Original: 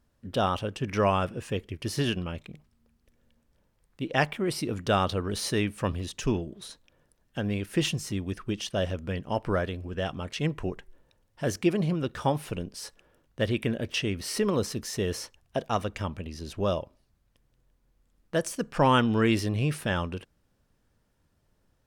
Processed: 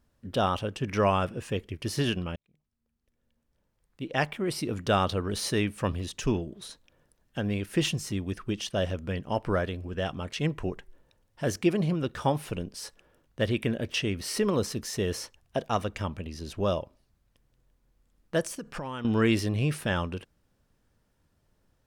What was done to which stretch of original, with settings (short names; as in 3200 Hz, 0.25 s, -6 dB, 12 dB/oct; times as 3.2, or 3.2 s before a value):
2.36–4.8 fade in
18.42–19.05 compressor 12:1, threshold -32 dBFS